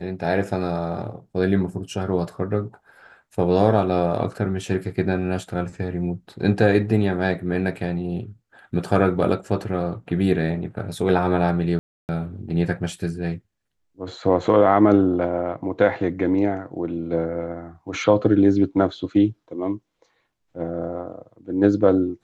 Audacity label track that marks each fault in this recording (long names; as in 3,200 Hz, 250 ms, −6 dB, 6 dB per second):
11.790000	12.090000	drop-out 299 ms